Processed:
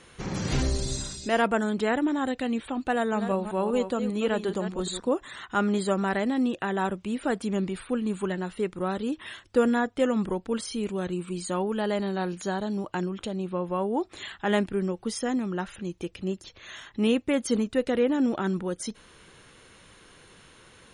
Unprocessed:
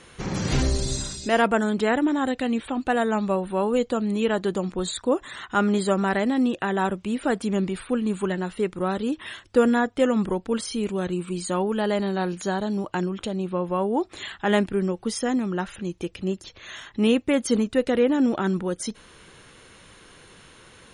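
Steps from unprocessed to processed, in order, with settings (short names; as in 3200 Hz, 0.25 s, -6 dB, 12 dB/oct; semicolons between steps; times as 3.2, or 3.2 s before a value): 2.93–5.14 reverse delay 0.195 s, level -9 dB; gain -3.5 dB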